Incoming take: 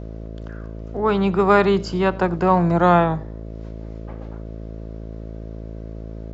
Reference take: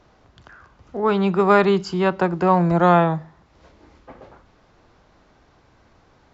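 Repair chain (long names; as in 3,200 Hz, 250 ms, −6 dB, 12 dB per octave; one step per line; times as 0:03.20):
hum removal 54.8 Hz, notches 12
echo removal 91 ms −23 dB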